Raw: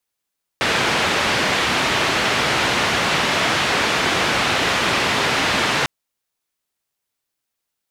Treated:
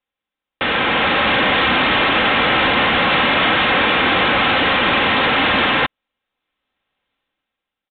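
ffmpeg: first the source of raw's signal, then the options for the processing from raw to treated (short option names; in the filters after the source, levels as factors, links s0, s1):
-f lavfi -i "anoisesrc=c=white:d=5.25:r=44100:seed=1,highpass=f=82,lowpass=f=2800,volume=-5.5dB"
-af "aecho=1:1:3.8:0.41,dynaudnorm=f=170:g=11:m=6.31,aresample=8000,asoftclip=type=tanh:threshold=0.335,aresample=44100"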